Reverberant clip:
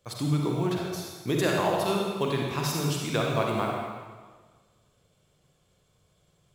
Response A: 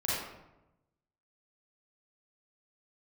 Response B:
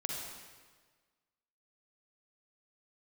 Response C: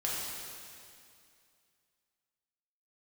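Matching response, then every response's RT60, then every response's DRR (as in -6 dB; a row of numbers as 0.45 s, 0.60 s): B; 0.95 s, 1.5 s, 2.4 s; -8.5 dB, -1.0 dB, -6.0 dB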